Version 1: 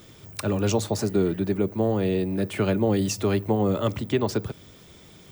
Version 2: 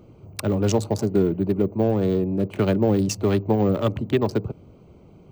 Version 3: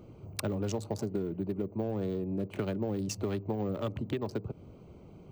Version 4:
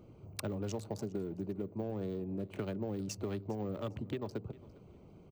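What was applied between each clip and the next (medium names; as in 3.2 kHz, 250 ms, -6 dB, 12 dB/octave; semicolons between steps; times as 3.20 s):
local Wiener filter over 25 samples; trim +3 dB
compression 6:1, threshold -28 dBFS, peak gain reduction 13 dB; trim -2.5 dB
feedback delay 404 ms, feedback 26%, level -21 dB; trim -5 dB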